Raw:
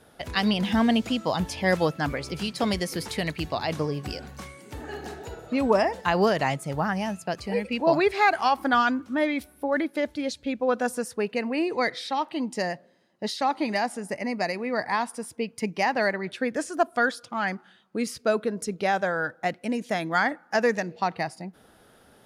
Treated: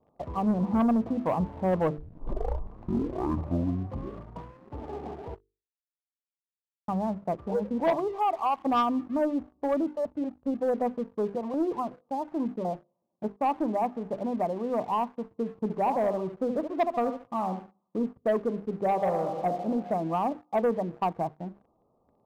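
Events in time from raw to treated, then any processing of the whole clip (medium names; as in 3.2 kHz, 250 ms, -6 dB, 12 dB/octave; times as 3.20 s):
1.98 s: tape start 2.79 s
5.35–6.88 s: mute
7.90–8.66 s: bass shelf 460 Hz -11.5 dB
9.87–13.24 s: step-sequenced notch 5.4 Hz 310–6400 Hz
15.47–18.00 s: thinning echo 71 ms, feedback 33%, high-pass 210 Hz, level -8.5 dB
18.81–19.50 s: reverb throw, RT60 1.8 s, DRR 5 dB
whole clip: Chebyshev low-pass 1.2 kHz, order 8; hum notches 50/100/150/200/250/300/350/400/450 Hz; waveshaping leveller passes 2; trim -6.5 dB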